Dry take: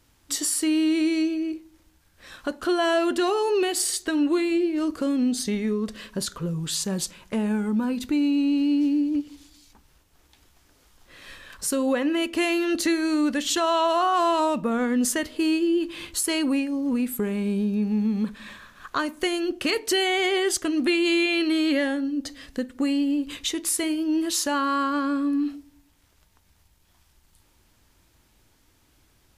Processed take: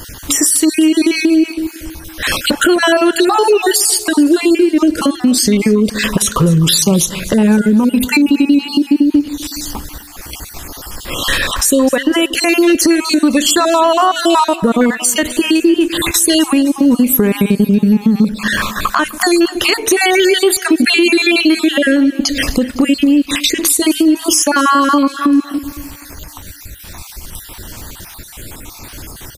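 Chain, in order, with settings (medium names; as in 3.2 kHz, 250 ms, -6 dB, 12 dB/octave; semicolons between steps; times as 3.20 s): random holes in the spectrogram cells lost 41%; treble shelf 10 kHz +9.5 dB; compression 10:1, threshold -39 dBFS, peak gain reduction 20 dB; on a send: feedback delay 254 ms, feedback 50%, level -19 dB; on the sum: loudness maximiser +32 dB; trim -1 dB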